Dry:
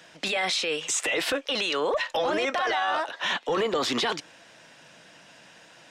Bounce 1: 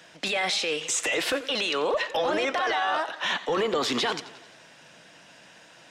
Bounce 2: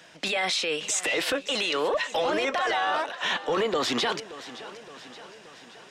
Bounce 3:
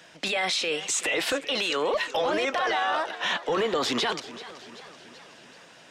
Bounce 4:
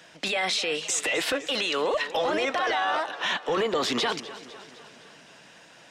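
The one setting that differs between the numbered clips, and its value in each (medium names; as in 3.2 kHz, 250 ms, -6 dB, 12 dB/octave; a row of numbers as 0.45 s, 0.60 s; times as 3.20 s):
modulated delay, time: 88 ms, 572 ms, 382 ms, 254 ms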